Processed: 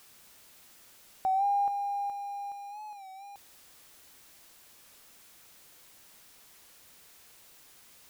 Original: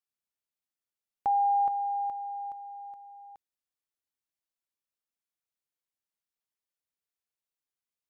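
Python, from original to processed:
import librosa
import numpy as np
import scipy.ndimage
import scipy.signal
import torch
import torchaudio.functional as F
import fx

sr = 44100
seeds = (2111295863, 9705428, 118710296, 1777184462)

y = x + 0.5 * 10.0 ** (-45.0 / 20.0) * np.sign(x)
y = fx.record_warp(y, sr, rpm=33.33, depth_cents=100.0)
y = y * 10.0 ** (-2.5 / 20.0)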